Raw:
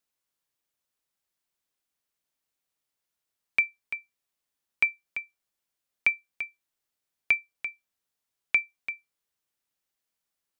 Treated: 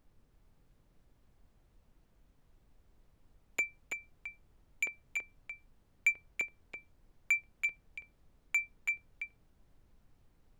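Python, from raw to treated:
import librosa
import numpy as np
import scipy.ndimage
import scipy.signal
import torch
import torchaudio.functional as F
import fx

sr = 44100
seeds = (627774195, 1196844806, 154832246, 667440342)

p1 = 10.0 ** (-21.0 / 20.0) * np.tanh(x / 10.0 ** (-21.0 / 20.0))
p2 = fx.filter_lfo_highpass(p1, sr, shape='saw_up', hz=3.9, low_hz=420.0, high_hz=4300.0, q=1.6)
p3 = fx.dmg_noise_colour(p2, sr, seeds[0], colour='brown', level_db=-60.0)
p4 = p3 + fx.echo_single(p3, sr, ms=330, db=-6.5, dry=0)
y = p4 * 10.0 ** (-4.5 / 20.0)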